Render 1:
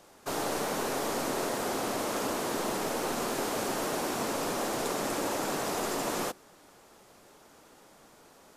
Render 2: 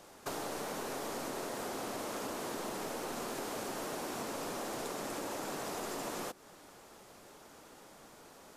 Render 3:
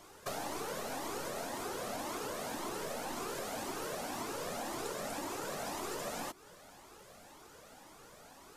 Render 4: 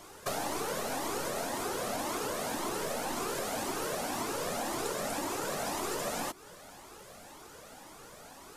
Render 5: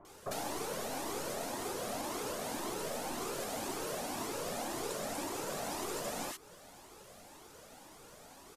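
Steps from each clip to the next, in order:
compressor 6:1, threshold -38 dBFS, peak gain reduction 10 dB; gain +1 dB
cascading flanger rising 1.9 Hz; gain +4.5 dB
bell 10000 Hz +2 dB; gain +5 dB
bands offset in time lows, highs 50 ms, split 1400 Hz; gain -3.5 dB

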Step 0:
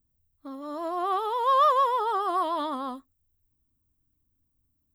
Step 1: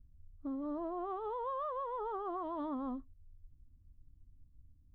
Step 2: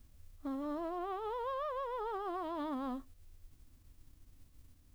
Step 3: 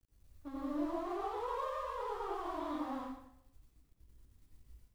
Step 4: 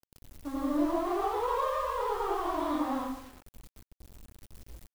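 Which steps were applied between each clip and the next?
tilt -4.5 dB/oct; compressor, threshold -29 dBFS, peak gain reduction 11.5 dB; tone controls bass +4 dB, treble -13 dB; gain -7.5 dB
spectral whitening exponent 0.6
chorus voices 6, 1.1 Hz, delay 20 ms, depth 3.2 ms; crossover distortion -57 dBFS; plate-style reverb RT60 0.78 s, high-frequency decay 0.85×, pre-delay 75 ms, DRR -5.5 dB; gain -3 dB
bit-crush 10-bit; gain +8.5 dB

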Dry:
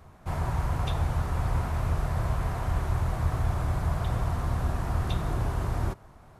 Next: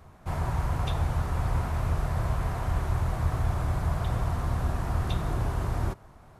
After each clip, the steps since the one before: nothing audible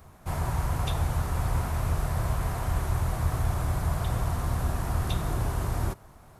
high shelf 7100 Hz +12 dB

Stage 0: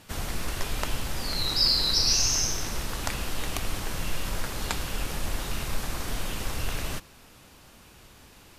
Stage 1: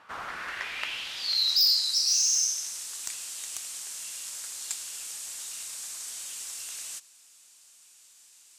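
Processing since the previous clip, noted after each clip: band-pass sweep 1200 Hz -> 7800 Hz, 0.17–1.94; in parallel at -3 dB: sine folder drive 9 dB, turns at -13.5 dBFS; on the sum: gain -4.5 dB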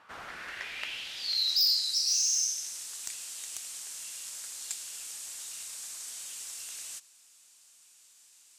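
dynamic EQ 1100 Hz, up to -6 dB, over -54 dBFS, Q 1.7; gain -3 dB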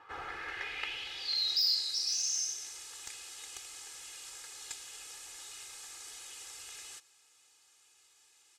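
LPF 2300 Hz 6 dB/oct; comb 2.4 ms, depth 99%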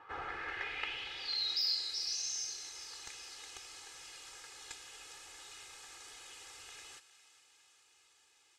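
LPF 2900 Hz 6 dB/oct; thinning echo 0.407 s, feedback 69%, high-pass 1000 Hz, level -14.5 dB; gain +1 dB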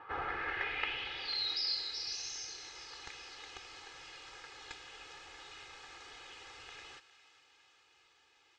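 air absorption 170 m; gain +5 dB

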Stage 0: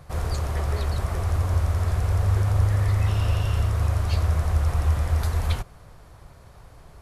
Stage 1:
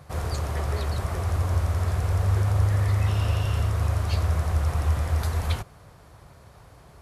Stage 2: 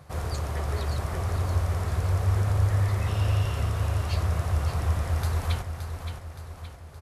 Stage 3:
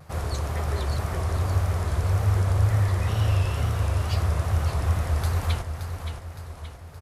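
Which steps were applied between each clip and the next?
HPF 65 Hz
feedback echo 0.57 s, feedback 50%, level -8 dB; gain -2 dB
wow and flutter 95 cents; gain +2 dB

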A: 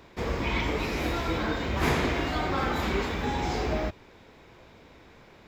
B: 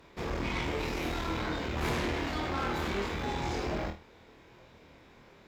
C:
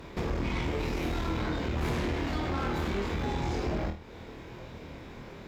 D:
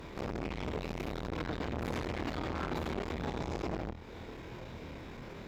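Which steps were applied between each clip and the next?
flutter echo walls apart 4.3 m, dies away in 0.28 s; tube stage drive 25 dB, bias 0.6; gain -2 dB
low shelf 390 Hz +7 dB; compressor 2.5:1, threshold -41 dBFS, peak gain reduction 11.5 dB; gain +8 dB
core saturation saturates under 590 Hz

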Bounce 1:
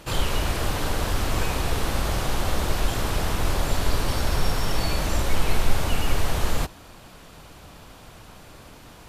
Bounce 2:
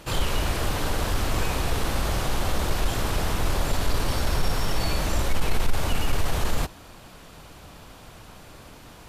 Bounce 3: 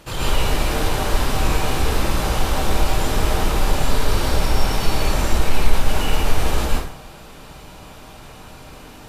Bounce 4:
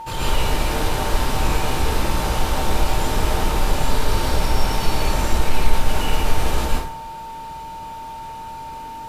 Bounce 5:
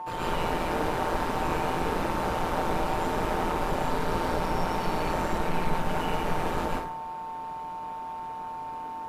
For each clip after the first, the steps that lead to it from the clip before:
soft clip -11.5 dBFS, distortion -19 dB
plate-style reverb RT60 0.66 s, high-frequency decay 0.75×, pre-delay 0.1 s, DRR -5.5 dB; gain -1 dB
whine 900 Hz -30 dBFS; gain -1 dB
three-band isolator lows -13 dB, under 160 Hz, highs -12 dB, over 2100 Hz; AM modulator 170 Hz, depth 40%

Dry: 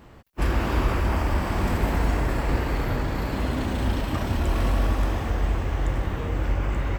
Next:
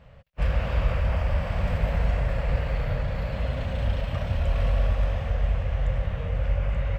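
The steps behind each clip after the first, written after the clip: EQ curve 160 Hz 0 dB, 340 Hz -22 dB, 540 Hz +3 dB, 870 Hz -9 dB, 2700 Hz -2 dB, 10000 Hz -18 dB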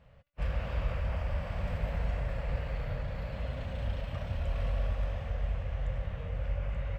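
resonator 290 Hz, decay 0.82 s, mix 40%; gain -4 dB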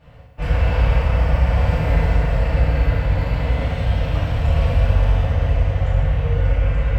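FDN reverb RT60 1.2 s, low-frequency decay 1.25×, high-frequency decay 0.85×, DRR -9 dB; gain +6 dB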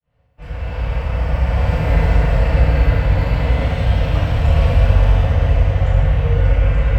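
opening faded in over 2.25 s; gain +3.5 dB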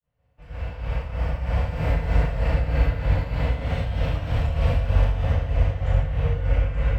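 tremolo 3.2 Hz, depth 61%; gain -5 dB

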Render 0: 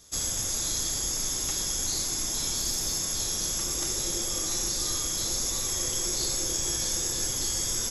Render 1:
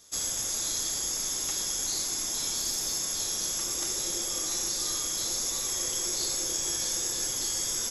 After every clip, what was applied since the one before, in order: low shelf 180 Hz -11.5 dB; gain -1 dB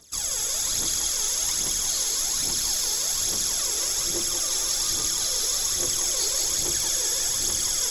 phaser 1.2 Hz, delay 2.4 ms, feedback 68%; thinning echo 0.181 s, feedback 73%, high-pass 550 Hz, level -3.5 dB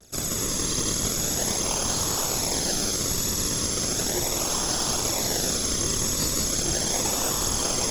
vibrato 1 Hz 58 cents; in parallel at -3.5 dB: decimation with a swept rate 39×, swing 100% 0.37 Hz; on the sum: gain -2 dB

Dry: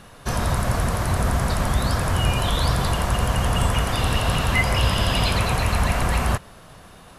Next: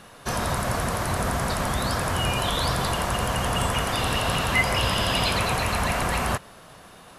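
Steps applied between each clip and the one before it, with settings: low shelf 120 Hz -11 dB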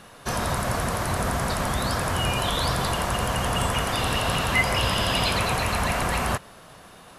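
nothing audible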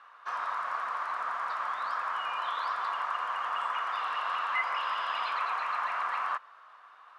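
ladder band-pass 1300 Hz, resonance 60%; gain +3.5 dB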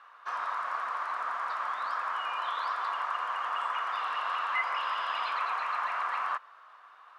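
brick-wall FIR high-pass 190 Hz

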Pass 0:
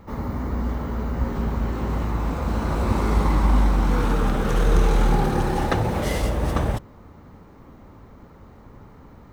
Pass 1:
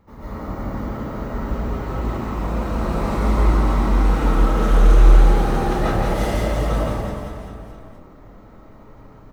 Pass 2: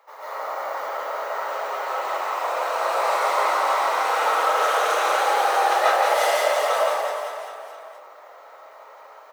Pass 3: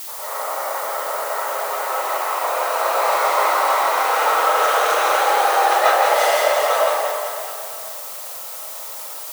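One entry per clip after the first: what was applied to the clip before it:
reverse bouncing-ball echo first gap 0.17 s, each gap 1.1×, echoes 5; digital reverb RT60 0.8 s, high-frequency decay 0.4×, pre-delay 0.1 s, DRR -10 dB; gain -10.5 dB
steep high-pass 550 Hz 36 dB/oct; gain +7 dB
added noise blue -36 dBFS; gain +3.5 dB

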